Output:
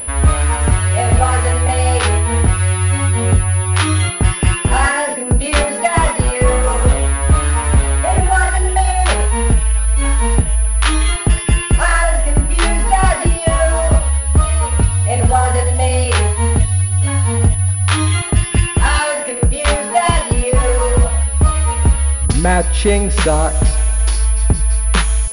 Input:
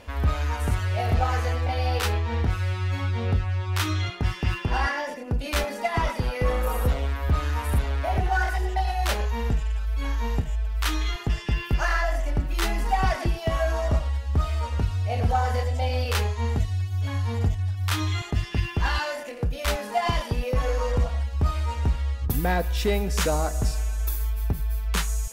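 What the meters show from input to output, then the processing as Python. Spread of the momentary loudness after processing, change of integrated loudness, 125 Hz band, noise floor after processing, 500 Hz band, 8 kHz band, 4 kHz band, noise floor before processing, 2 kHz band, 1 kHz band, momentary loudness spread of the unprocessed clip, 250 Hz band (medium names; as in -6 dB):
2 LU, +11.5 dB, +11.0 dB, -22 dBFS, +11.0 dB, +20.5 dB, +9.0 dB, -36 dBFS, +11.0 dB, +10.5 dB, 4 LU, +11.0 dB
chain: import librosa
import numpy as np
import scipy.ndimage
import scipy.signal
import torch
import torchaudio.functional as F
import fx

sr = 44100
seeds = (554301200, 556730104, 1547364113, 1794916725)

p1 = fx.rider(x, sr, range_db=10, speed_s=0.5)
p2 = x + F.gain(torch.from_numpy(p1), 1.0).numpy()
p3 = fx.pwm(p2, sr, carrier_hz=10000.0)
y = F.gain(torch.from_numpy(p3), 4.5).numpy()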